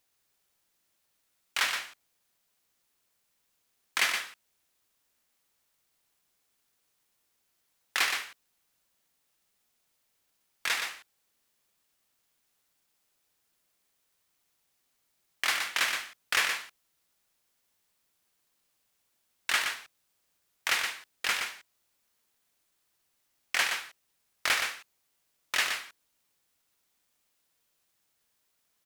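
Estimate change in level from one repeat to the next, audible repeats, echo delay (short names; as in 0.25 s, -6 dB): no steady repeat, 1, 0.121 s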